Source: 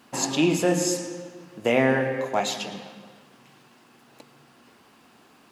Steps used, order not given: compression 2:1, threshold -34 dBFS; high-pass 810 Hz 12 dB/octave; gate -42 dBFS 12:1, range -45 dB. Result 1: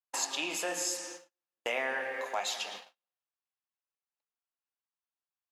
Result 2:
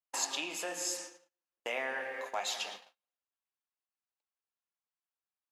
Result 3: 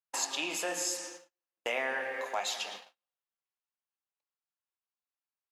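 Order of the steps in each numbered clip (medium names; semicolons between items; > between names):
high-pass > gate > compression; compression > high-pass > gate; high-pass > compression > gate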